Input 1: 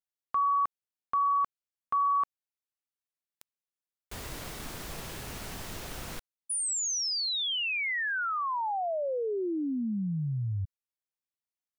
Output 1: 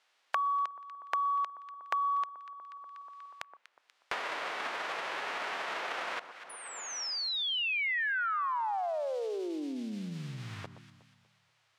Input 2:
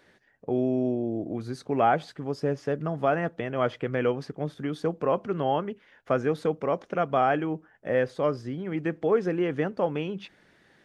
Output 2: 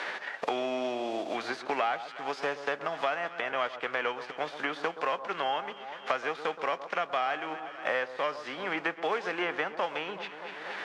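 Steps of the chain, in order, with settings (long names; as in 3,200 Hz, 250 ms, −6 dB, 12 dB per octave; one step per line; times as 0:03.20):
spectral envelope flattened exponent 0.6
soft clipping −11.5 dBFS
band-pass filter 680–3,500 Hz
on a send: delay that swaps between a low-pass and a high-pass 121 ms, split 1,300 Hz, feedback 60%, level −13 dB
on the sum: multiband upward and downward compressor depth 100%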